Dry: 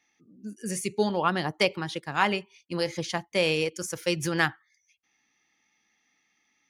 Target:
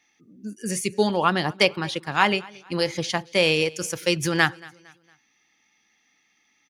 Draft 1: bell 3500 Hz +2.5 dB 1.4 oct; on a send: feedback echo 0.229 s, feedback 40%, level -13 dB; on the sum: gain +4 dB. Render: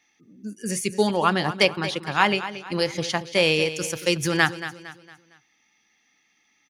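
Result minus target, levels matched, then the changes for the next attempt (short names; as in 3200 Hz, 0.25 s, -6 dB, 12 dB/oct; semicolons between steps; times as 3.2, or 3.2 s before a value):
echo-to-direct +10.5 dB
change: feedback echo 0.229 s, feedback 40%, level -23.5 dB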